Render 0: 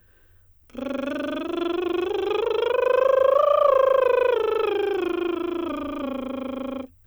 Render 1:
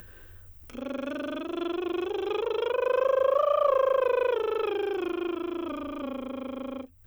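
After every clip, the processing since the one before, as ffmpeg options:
-af "acompressor=mode=upward:threshold=-30dB:ratio=2.5,volume=-5.5dB"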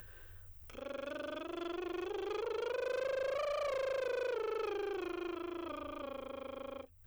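-af "equalizer=f=240:t=o:w=0.67:g=-14,asoftclip=type=tanh:threshold=-28.5dB,volume=-4.5dB"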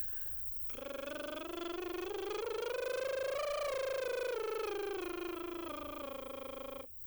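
-af "aeval=exprs='0.0237*(cos(1*acos(clip(val(0)/0.0237,-1,1)))-cos(1*PI/2))+0.000596*(cos(8*acos(clip(val(0)/0.0237,-1,1)))-cos(8*PI/2))':c=same,aemphasis=mode=production:type=50fm,asoftclip=type=tanh:threshold=-27dB"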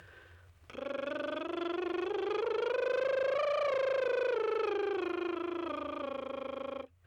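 -af "highpass=110,lowpass=2.9k,volume=6dB"

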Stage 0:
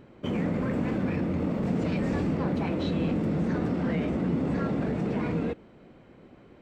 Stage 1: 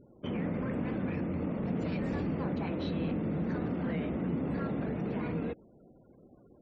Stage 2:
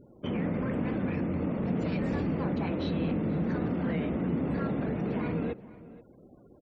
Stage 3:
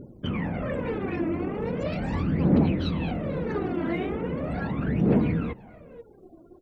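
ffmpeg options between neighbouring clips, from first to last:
-af "afftfilt=real='re*gte(hypot(re,im),0.00282)':imag='im*gte(hypot(re,im),0.00282)':win_size=1024:overlap=0.75,volume=-5.5dB"
-filter_complex "[0:a]asplit=2[a][b];[b]adelay=478.1,volume=-18dB,highshelf=f=4k:g=-10.8[c];[a][c]amix=inputs=2:normalize=0,volume=3dB"
-af "aphaser=in_gain=1:out_gain=1:delay=3.1:decay=0.71:speed=0.39:type=triangular,volume=1.5dB"

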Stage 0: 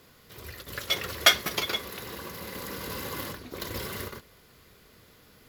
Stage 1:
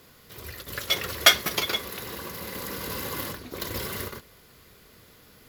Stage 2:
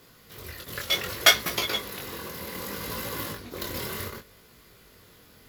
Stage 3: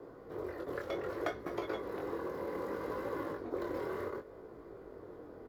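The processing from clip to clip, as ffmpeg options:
-af "highshelf=f=8.2k:g=3.5,volume=2dB"
-af "flanger=delay=17.5:depth=6.7:speed=0.65,volume=2.5dB"
-filter_complex "[0:a]acrossover=split=200|450|1500|3100[a][b][c][d][e];[a]acompressor=threshold=-53dB:ratio=4[f];[b]acompressor=threshold=-55dB:ratio=4[g];[c]acompressor=threshold=-50dB:ratio=4[h];[d]acompressor=threshold=-37dB:ratio=4[i];[e]acompressor=threshold=-37dB:ratio=4[j];[f][g][h][i][j]amix=inputs=5:normalize=0,firequalizer=gain_entry='entry(220,0);entry(310,14);entry(2700,-19);entry(12000,-26)':delay=0.05:min_phase=1,volume=-1dB"

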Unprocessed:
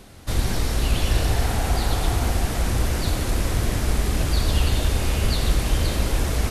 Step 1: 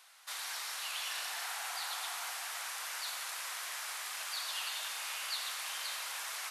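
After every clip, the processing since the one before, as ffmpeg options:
-af "highpass=f=970:w=0.5412,highpass=f=970:w=1.3066,volume=-7.5dB"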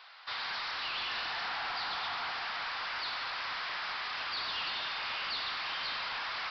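-af "equalizer=f=1.1k:w=0.97:g=3.5,aresample=11025,asoftclip=type=tanh:threshold=-39dB,aresample=44100,volume=7dB"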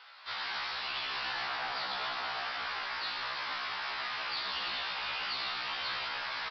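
-filter_complex "[0:a]asplit=9[a][b][c][d][e][f][g][h][i];[b]adelay=82,afreqshift=-100,volume=-10.5dB[j];[c]adelay=164,afreqshift=-200,volume=-14.4dB[k];[d]adelay=246,afreqshift=-300,volume=-18.3dB[l];[e]adelay=328,afreqshift=-400,volume=-22.1dB[m];[f]adelay=410,afreqshift=-500,volume=-26dB[n];[g]adelay=492,afreqshift=-600,volume=-29.9dB[o];[h]adelay=574,afreqshift=-700,volume=-33.8dB[p];[i]adelay=656,afreqshift=-800,volume=-37.6dB[q];[a][j][k][l][m][n][o][p][q]amix=inputs=9:normalize=0,afftfilt=real='re*1.73*eq(mod(b,3),0)':imag='im*1.73*eq(mod(b,3),0)':win_size=2048:overlap=0.75,volume=2dB"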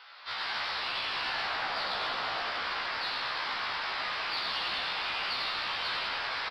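-filter_complex "[0:a]asplit=2[a][b];[b]asoftclip=type=tanh:threshold=-33.5dB,volume=-11dB[c];[a][c]amix=inputs=2:normalize=0,asplit=8[d][e][f][g][h][i][j][k];[e]adelay=100,afreqshift=-110,volume=-6dB[l];[f]adelay=200,afreqshift=-220,volume=-11.2dB[m];[g]adelay=300,afreqshift=-330,volume=-16.4dB[n];[h]adelay=400,afreqshift=-440,volume=-21.6dB[o];[i]adelay=500,afreqshift=-550,volume=-26.8dB[p];[j]adelay=600,afreqshift=-660,volume=-32dB[q];[k]adelay=700,afreqshift=-770,volume=-37.2dB[r];[d][l][m][n][o][p][q][r]amix=inputs=8:normalize=0"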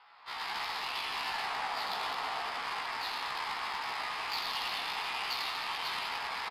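-af "highpass=f=190:w=0.5412,highpass=f=190:w=1.3066,equalizer=f=220:t=q:w=4:g=-5,equalizer=f=330:t=q:w=4:g=-7,equalizer=f=560:t=q:w=4:g=-10,equalizer=f=870:t=q:w=4:g=4,equalizer=f=1.5k:t=q:w=4:g=-7,equalizer=f=5.1k:t=q:w=4:g=9,lowpass=f=7.2k:w=0.5412,lowpass=f=7.2k:w=1.3066,adynamicsmooth=sensitivity=3.5:basefreq=1.6k"

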